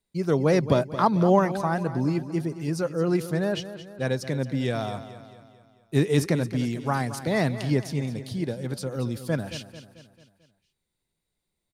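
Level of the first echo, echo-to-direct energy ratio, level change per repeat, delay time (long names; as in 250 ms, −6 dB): −13.0 dB, −12.0 dB, −6.0 dB, 221 ms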